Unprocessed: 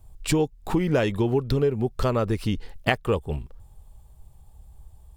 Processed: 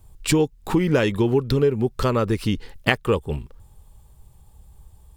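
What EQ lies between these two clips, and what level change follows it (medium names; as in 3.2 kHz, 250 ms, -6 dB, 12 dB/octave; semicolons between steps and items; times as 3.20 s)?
bass shelf 89 Hz -6.5 dB; peaking EQ 690 Hz -7 dB 0.43 oct; +4.5 dB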